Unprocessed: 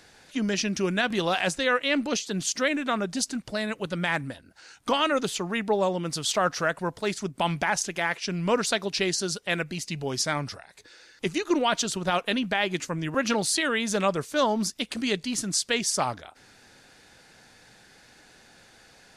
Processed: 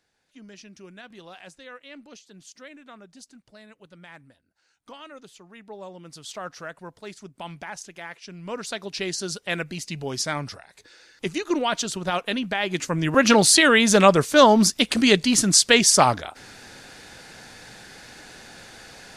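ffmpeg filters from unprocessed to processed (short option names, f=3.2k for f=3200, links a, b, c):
-af "volume=10dB,afade=t=in:st=5.5:d=0.89:silence=0.398107,afade=t=in:st=8.41:d=1.04:silence=0.281838,afade=t=in:st=12.62:d=0.77:silence=0.316228"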